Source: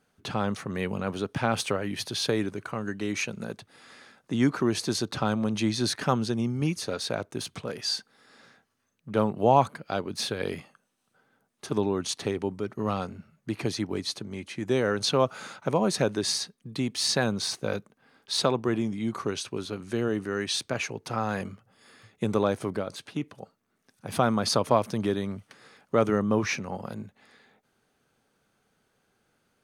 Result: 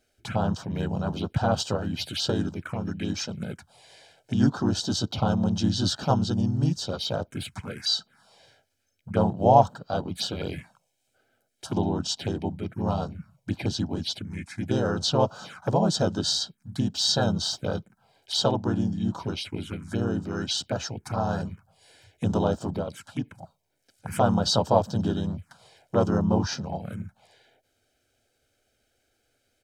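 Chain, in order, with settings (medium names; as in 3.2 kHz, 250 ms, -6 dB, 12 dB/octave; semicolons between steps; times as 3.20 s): harmony voices -3 st -1 dB; comb 1.3 ms, depth 49%; touch-sensitive phaser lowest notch 170 Hz, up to 2.2 kHz, full sweep at -24.5 dBFS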